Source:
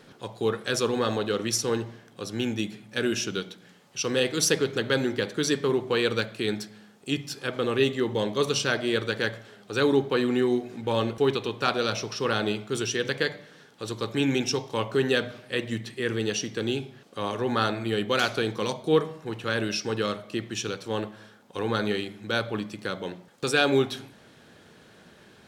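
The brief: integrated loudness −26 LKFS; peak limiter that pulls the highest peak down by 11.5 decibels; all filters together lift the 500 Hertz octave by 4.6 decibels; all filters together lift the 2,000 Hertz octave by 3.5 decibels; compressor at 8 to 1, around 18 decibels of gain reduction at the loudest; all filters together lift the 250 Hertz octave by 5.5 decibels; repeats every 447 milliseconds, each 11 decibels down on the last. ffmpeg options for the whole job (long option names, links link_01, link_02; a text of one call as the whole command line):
ffmpeg -i in.wav -af "equalizer=frequency=250:width_type=o:gain=5.5,equalizer=frequency=500:width_type=o:gain=3.5,equalizer=frequency=2000:width_type=o:gain=4.5,acompressor=threshold=-32dB:ratio=8,alimiter=level_in=2.5dB:limit=-24dB:level=0:latency=1,volume=-2.5dB,aecho=1:1:447|894|1341:0.282|0.0789|0.0221,volume=12dB" out.wav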